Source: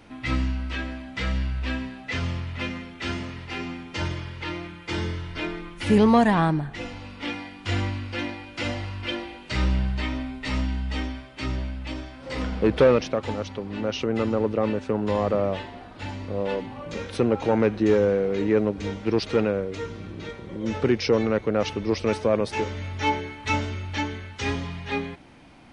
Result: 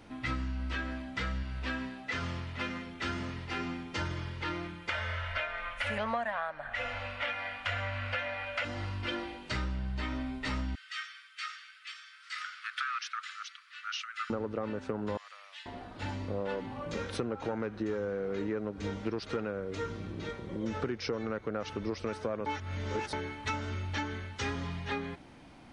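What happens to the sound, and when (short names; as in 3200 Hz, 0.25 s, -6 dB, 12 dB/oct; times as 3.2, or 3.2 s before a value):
1.43–2.87 low shelf 150 Hz -7.5 dB
4.89–8.65 EQ curve 100 Hz 0 dB, 160 Hz -22 dB, 240 Hz -5 dB, 350 Hz -27 dB, 570 Hz +14 dB, 870 Hz +3 dB, 1900 Hz +10 dB, 2600 Hz +10 dB, 4900 Hz -2 dB
10.75–14.3 steep high-pass 1200 Hz 96 dB/oct
15.17–15.66 Bessel high-pass 2500 Hz, order 4
22.46–23.13 reverse
whole clip: dynamic EQ 1400 Hz, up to +7 dB, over -45 dBFS, Q 2.1; compressor 12:1, threshold -27 dBFS; bell 2500 Hz -2.5 dB 0.64 oct; gain -3 dB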